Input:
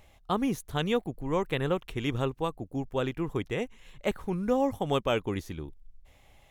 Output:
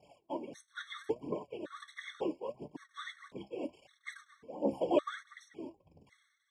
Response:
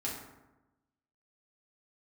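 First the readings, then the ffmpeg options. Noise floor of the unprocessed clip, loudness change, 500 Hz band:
-59 dBFS, -9.0 dB, -7.5 dB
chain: -af "aeval=exprs='val(0)+0.5*0.0188*sgn(val(0))':c=same,agate=range=0.0224:threshold=0.0398:ratio=3:detection=peak,equalizer=f=2200:w=1.2:g=-7.5,areverse,acompressor=threshold=0.0224:ratio=5,areverse,afftfilt=real='hypot(re,im)*cos(2*PI*random(0))':imag='hypot(re,im)*sin(2*PI*random(1))':win_size=512:overlap=0.75,aphaser=in_gain=1:out_gain=1:delay=3.5:decay=0.66:speed=1.5:type=triangular,tremolo=f=1:d=0.81,flanger=delay=6.6:depth=8.4:regen=60:speed=0.73:shape=sinusoidal,highpass=270,equalizer=f=320:t=q:w=4:g=3,equalizer=f=590:t=q:w=4:g=4,equalizer=f=1300:t=q:w=4:g=-6,equalizer=f=1900:t=q:w=4:g=6,equalizer=f=4400:t=q:w=4:g=-8,equalizer=f=6700:t=q:w=4:g=-9,lowpass=f=7300:w=0.5412,lowpass=f=7300:w=1.3066,afftfilt=real='re*gt(sin(2*PI*0.9*pts/sr)*(1-2*mod(floor(b*sr/1024/1100),2)),0)':imag='im*gt(sin(2*PI*0.9*pts/sr)*(1-2*mod(floor(b*sr/1024/1100),2)),0)':win_size=1024:overlap=0.75,volume=5.96"

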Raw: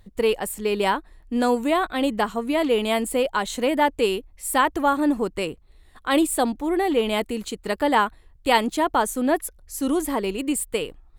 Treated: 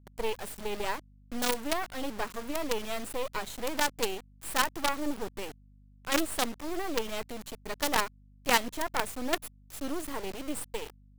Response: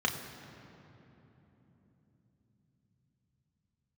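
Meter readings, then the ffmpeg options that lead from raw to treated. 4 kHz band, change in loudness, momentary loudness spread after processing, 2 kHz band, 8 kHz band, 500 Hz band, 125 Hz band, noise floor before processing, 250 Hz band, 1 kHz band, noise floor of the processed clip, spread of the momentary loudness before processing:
-5.0 dB, -9.5 dB, 12 LU, -6.5 dB, -5.0 dB, -12.0 dB, -8.0 dB, -53 dBFS, -13.5 dB, -10.5 dB, -57 dBFS, 8 LU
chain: -af "acrusher=bits=3:dc=4:mix=0:aa=0.000001,aeval=exprs='val(0)+0.00355*(sin(2*PI*50*n/s)+sin(2*PI*2*50*n/s)/2+sin(2*PI*3*50*n/s)/3+sin(2*PI*4*50*n/s)/4+sin(2*PI*5*50*n/s)/5)':c=same,volume=0.447"

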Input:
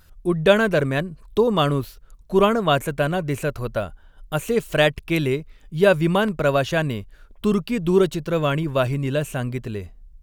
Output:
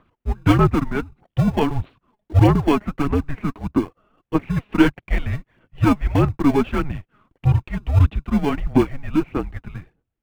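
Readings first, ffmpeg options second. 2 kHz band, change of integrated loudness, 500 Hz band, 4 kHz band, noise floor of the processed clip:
-5.5 dB, +1.0 dB, -6.0 dB, -7.5 dB, -79 dBFS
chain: -filter_complex "[0:a]highpass=f=300:t=q:w=0.5412,highpass=f=300:t=q:w=1.307,lowpass=f=3500:t=q:w=0.5176,lowpass=f=3500:t=q:w=0.7071,lowpass=f=3500:t=q:w=1.932,afreqshift=-290,asplit=2[s0][s1];[s1]acrusher=samples=35:mix=1:aa=0.000001,volume=0.562[s2];[s0][s2]amix=inputs=2:normalize=0,highshelf=f=2500:g=-9,aphaser=in_gain=1:out_gain=1:delay=4.9:decay=0.49:speed=1.6:type=sinusoidal,volume=0.891"

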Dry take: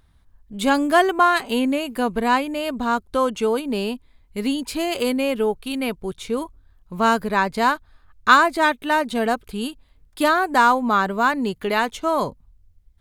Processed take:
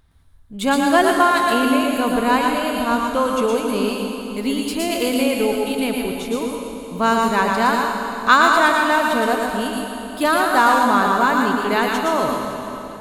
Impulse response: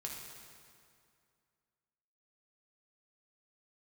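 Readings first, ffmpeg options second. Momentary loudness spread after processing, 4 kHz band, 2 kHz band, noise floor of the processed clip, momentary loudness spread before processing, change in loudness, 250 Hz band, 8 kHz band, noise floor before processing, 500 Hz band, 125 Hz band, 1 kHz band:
11 LU, +3.5 dB, +3.0 dB, -33 dBFS, 12 LU, +2.5 dB, +3.5 dB, +6.0 dB, -57 dBFS, +2.5 dB, +2.5 dB, +3.0 dB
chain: -filter_complex "[0:a]asplit=2[s0][s1];[s1]highshelf=f=7700:g=10[s2];[1:a]atrim=start_sample=2205,asetrate=26901,aresample=44100,adelay=115[s3];[s2][s3]afir=irnorm=-1:irlink=0,volume=0.708[s4];[s0][s4]amix=inputs=2:normalize=0"

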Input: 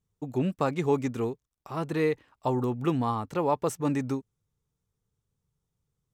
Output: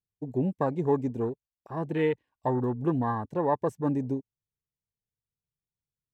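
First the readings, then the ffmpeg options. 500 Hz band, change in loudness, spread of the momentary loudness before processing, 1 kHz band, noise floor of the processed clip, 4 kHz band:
0.0 dB, 0.0 dB, 7 LU, -0.5 dB, under -85 dBFS, no reading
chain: -af "asuperstop=centerf=1300:order=12:qfactor=5.2,afwtdn=0.0178"

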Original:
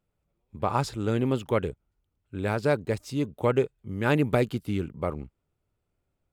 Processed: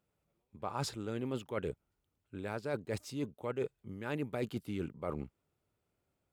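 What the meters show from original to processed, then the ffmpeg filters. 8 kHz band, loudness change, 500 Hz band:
-4.5 dB, -11.5 dB, -11.5 dB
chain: -af "highpass=f=140:p=1,areverse,acompressor=threshold=0.02:ratio=6,areverse"

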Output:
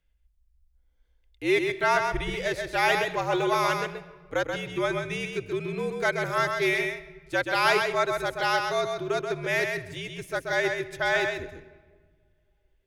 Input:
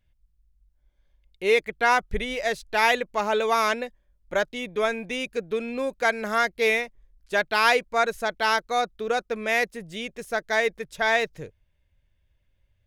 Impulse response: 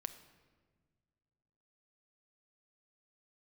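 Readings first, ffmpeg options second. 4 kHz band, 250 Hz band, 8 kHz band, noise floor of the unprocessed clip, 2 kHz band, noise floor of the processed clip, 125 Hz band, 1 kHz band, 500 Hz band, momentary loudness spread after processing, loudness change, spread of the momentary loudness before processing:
-2.0 dB, +1.5 dB, -2.0 dB, -69 dBFS, -2.0 dB, -67 dBFS, +8.5 dB, -2.5 dB, -1.5 dB, 9 LU, -2.0 dB, 9 LU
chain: -filter_complex "[0:a]afreqshift=-65,asplit=2[s0][s1];[1:a]atrim=start_sample=2205,adelay=131[s2];[s1][s2]afir=irnorm=-1:irlink=0,volume=0.794[s3];[s0][s3]amix=inputs=2:normalize=0,volume=0.708"

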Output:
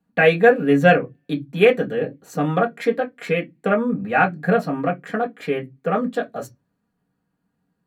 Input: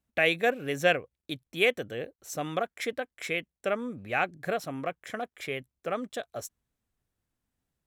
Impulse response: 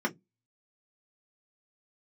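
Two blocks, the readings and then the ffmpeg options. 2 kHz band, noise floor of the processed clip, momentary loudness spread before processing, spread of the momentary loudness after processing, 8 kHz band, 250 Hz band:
+8.0 dB, -74 dBFS, 12 LU, 13 LU, no reading, +15.0 dB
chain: -filter_complex "[1:a]atrim=start_sample=2205,asetrate=35280,aresample=44100[s0];[0:a][s0]afir=irnorm=-1:irlink=0"

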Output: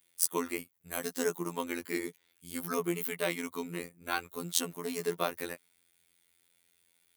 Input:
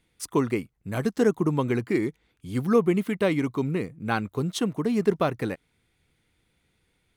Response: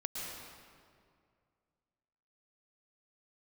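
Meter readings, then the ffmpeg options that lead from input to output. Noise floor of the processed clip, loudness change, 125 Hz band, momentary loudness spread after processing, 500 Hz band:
-73 dBFS, -8.5 dB, -17.5 dB, 10 LU, -10.0 dB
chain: -af "afftfilt=real='hypot(re,im)*cos(PI*b)':imag='0':win_size=2048:overlap=0.75,aemphasis=mode=production:type=riaa,volume=0.708"

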